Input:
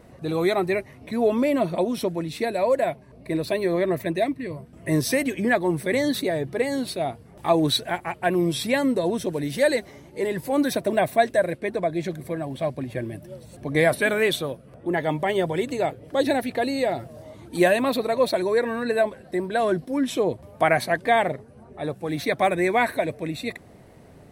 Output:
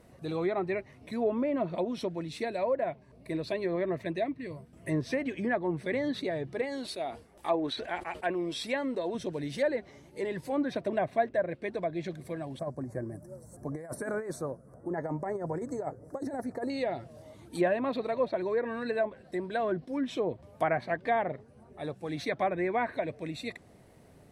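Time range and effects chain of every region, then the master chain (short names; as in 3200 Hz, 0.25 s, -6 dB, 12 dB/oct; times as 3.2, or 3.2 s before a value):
6.61–9.15 bell 130 Hz -15 dB 1.1 oct + sustainer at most 140 dB/s
12.59–16.7 Chebyshev band-stop 1300–6800 Hz + negative-ratio compressor -25 dBFS, ratio -0.5
whole clip: treble ducked by the level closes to 1600 Hz, closed at -17 dBFS; high shelf 4600 Hz +5 dB; gain -8 dB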